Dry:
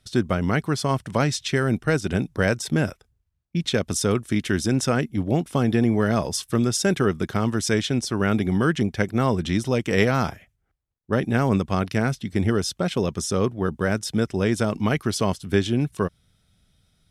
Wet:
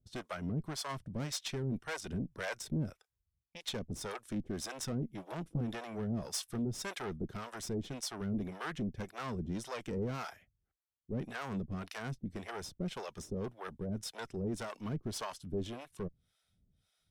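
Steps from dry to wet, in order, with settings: 5.13–5.61 comb 6.1 ms, depth 73%; tube stage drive 22 dB, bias 0.5; harmonic tremolo 1.8 Hz, depth 100%, crossover 520 Hz; gain -6 dB

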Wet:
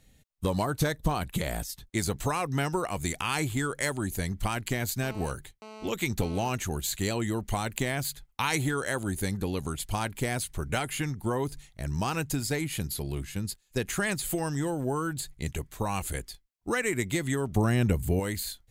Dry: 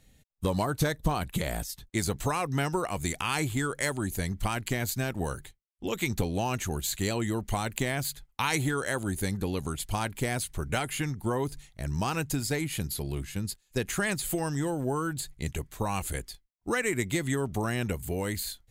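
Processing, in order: 5.03–6.49 GSM buzz -45 dBFS; 17.56–18.2 low shelf 380 Hz +8.5 dB

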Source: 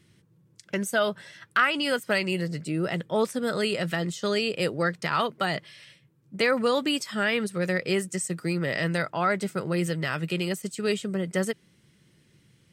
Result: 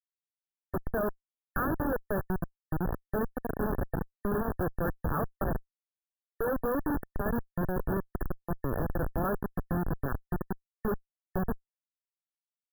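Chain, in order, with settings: 7.66–8.9 HPF 130 Hz 24 dB/oct; Schmitt trigger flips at -23 dBFS; brick-wall FIR band-stop 1800–11000 Hz

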